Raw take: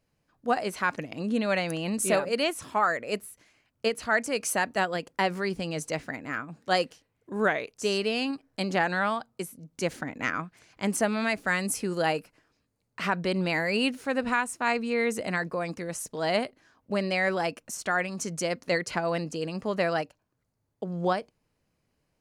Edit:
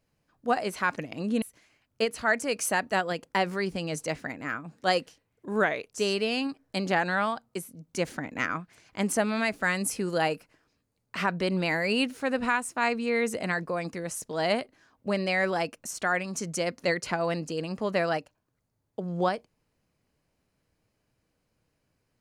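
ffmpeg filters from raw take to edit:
ffmpeg -i in.wav -filter_complex "[0:a]asplit=2[link_01][link_02];[link_01]atrim=end=1.422[link_03];[link_02]atrim=start=3.258[link_04];[link_03][link_04]acrossfade=duration=0.004:curve1=hsin:curve2=hsin" out.wav

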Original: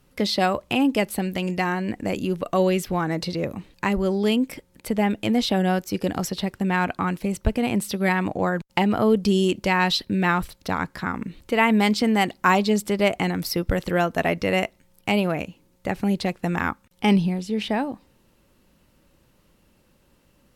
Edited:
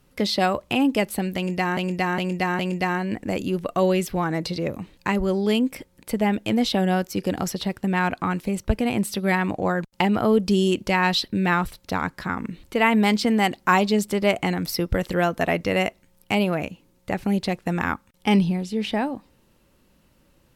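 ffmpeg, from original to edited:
ffmpeg -i in.wav -filter_complex "[0:a]asplit=4[link_01][link_02][link_03][link_04];[link_01]atrim=end=1.772[link_05];[link_02]atrim=start=1.358:end=1.772[link_06];[link_03]atrim=start=1.358:end=1.772[link_07];[link_04]atrim=start=1.358[link_08];[link_05][link_06]acrossfade=duration=0.004:curve1=hsin:curve2=hsin[link_09];[link_09][link_07]acrossfade=duration=0.004:curve1=hsin:curve2=hsin[link_10];[link_10][link_08]acrossfade=duration=0.004:curve1=hsin:curve2=hsin" out.wav

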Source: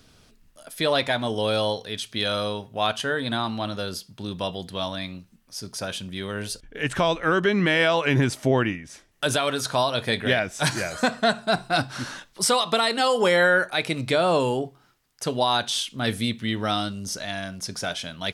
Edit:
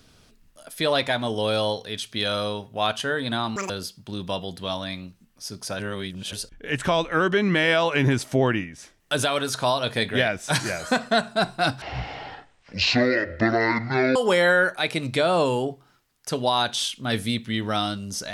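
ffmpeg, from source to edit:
ffmpeg -i in.wav -filter_complex "[0:a]asplit=7[link_01][link_02][link_03][link_04][link_05][link_06][link_07];[link_01]atrim=end=3.564[link_08];[link_02]atrim=start=3.56:end=3.81,asetpts=PTS-STARTPTS,asetrate=81144,aresample=44100[link_09];[link_03]atrim=start=3.806:end=5.912[link_10];[link_04]atrim=start=5.908:end=6.442,asetpts=PTS-STARTPTS,areverse[link_11];[link_05]atrim=start=6.438:end=11.934[link_12];[link_06]atrim=start=11.93:end=13.1,asetpts=PTS-STARTPTS,asetrate=22050,aresample=44100[link_13];[link_07]atrim=start=13.096[link_14];[link_08][link_09]acrossfade=duration=0.004:curve1=hsin:curve2=hsin[link_15];[link_15][link_10]acrossfade=duration=0.004:curve1=hsin:curve2=hsin[link_16];[link_16][link_11]acrossfade=duration=0.004:curve1=hsin:curve2=hsin[link_17];[link_17][link_12]acrossfade=duration=0.004:curve1=hsin:curve2=hsin[link_18];[link_18][link_13]acrossfade=duration=0.004:curve1=hsin:curve2=hsin[link_19];[link_19][link_14]acrossfade=duration=0.004:curve1=hsin:curve2=hsin" out.wav

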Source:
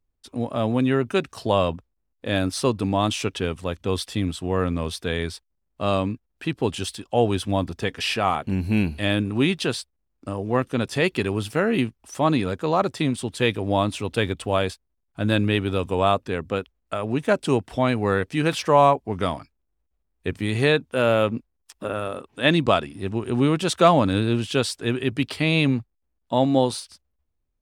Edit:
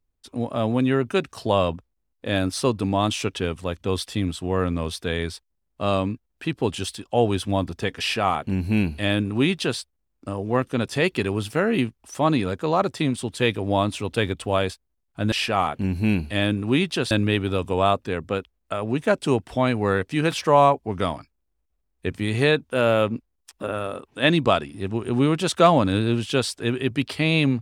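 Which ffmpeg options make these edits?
ffmpeg -i in.wav -filter_complex "[0:a]asplit=3[link_01][link_02][link_03];[link_01]atrim=end=15.322[link_04];[link_02]atrim=start=7.998:end=9.792[link_05];[link_03]atrim=start=15.318[link_06];[link_04][link_05]acrossfade=duration=0.004:curve1=hsin:curve2=hsin[link_07];[link_07][link_06]acrossfade=duration=0.004:curve1=hsin:curve2=hsin" out.wav

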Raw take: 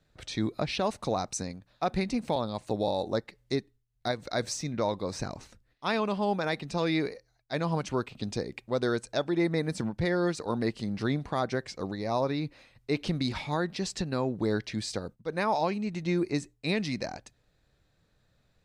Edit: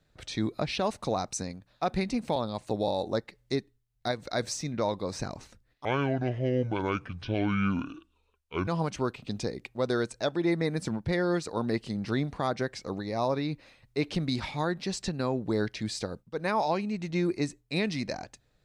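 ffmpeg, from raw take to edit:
ffmpeg -i in.wav -filter_complex "[0:a]asplit=3[link_01][link_02][link_03];[link_01]atrim=end=5.854[link_04];[link_02]atrim=start=5.85:end=7.6,asetpts=PTS-STARTPTS,asetrate=27342,aresample=44100[link_05];[link_03]atrim=start=7.596[link_06];[link_04][link_05]acrossfade=duration=0.004:curve1=hsin:curve2=hsin[link_07];[link_07][link_06]acrossfade=duration=0.004:curve1=hsin:curve2=hsin" out.wav

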